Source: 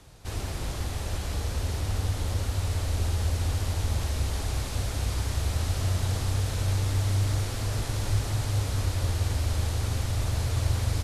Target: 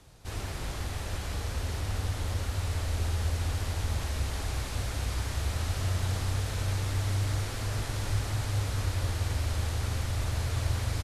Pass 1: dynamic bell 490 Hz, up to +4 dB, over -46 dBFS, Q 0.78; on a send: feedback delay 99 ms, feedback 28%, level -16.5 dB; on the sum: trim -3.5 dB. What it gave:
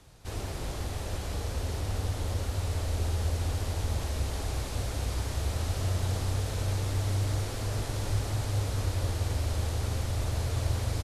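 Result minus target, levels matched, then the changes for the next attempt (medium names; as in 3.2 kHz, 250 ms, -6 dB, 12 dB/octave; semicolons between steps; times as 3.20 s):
2 kHz band -3.5 dB
change: dynamic bell 1.7 kHz, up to +4 dB, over -46 dBFS, Q 0.78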